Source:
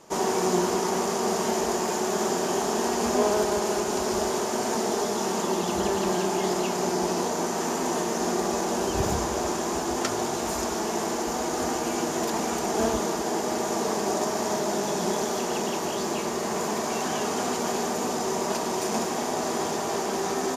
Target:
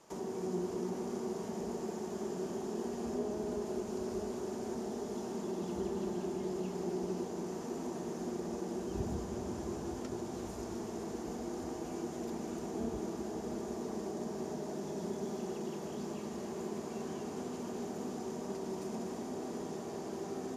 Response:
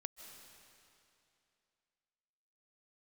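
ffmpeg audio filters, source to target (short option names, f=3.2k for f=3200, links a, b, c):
-filter_complex "[0:a]acrossover=split=430[a][b];[b]acompressor=threshold=-40dB:ratio=8[c];[a][c]amix=inputs=2:normalize=0[d];[1:a]atrim=start_sample=2205,asetrate=26019,aresample=44100[e];[d][e]afir=irnorm=-1:irlink=0,volume=-7.5dB"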